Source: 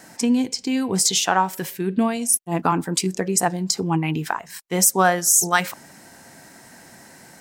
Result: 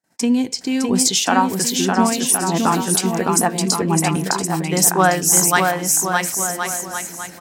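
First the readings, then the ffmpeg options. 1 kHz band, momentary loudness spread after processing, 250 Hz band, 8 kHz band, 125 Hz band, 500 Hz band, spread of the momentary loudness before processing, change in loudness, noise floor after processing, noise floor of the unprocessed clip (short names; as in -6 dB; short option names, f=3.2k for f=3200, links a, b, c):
+4.0 dB, 8 LU, +4.0 dB, +4.0 dB, +4.0 dB, +4.0 dB, 10 LU, +3.0 dB, -37 dBFS, -47 dBFS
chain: -af "aecho=1:1:610|1068|1411|1668|1861:0.631|0.398|0.251|0.158|0.1,agate=range=-43dB:threshold=-42dB:ratio=16:detection=peak,volume=2dB"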